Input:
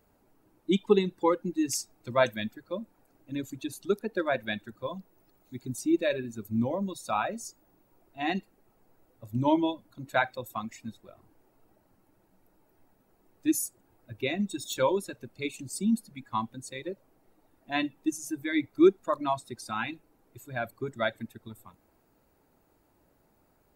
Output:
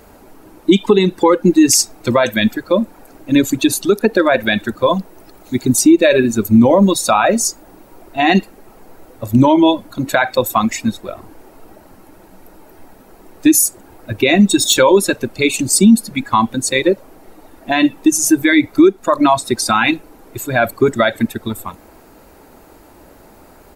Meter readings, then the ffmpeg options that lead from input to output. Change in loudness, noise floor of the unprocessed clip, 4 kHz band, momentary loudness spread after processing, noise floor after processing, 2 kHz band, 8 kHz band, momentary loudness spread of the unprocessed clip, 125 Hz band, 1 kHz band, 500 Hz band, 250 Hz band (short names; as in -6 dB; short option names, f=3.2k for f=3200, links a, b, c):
+16.5 dB, -68 dBFS, +19.0 dB, 11 LU, -45 dBFS, +16.5 dB, +22.0 dB, 15 LU, +16.5 dB, +15.5 dB, +15.0 dB, +17.5 dB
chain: -af "equalizer=f=130:t=o:w=1:g=-7,acompressor=threshold=-27dB:ratio=6,aresample=32000,aresample=44100,alimiter=level_in=25.5dB:limit=-1dB:release=50:level=0:latency=1,volume=-1dB"